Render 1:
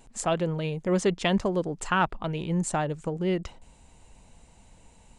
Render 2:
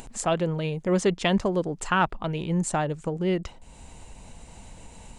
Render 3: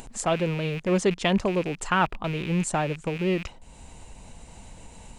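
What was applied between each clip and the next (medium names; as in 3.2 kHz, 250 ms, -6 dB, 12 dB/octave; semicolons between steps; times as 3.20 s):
upward compressor, threshold -36 dBFS; trim +1.5 dB
rattle on loud lows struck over -37 dBFS, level -27 dBFS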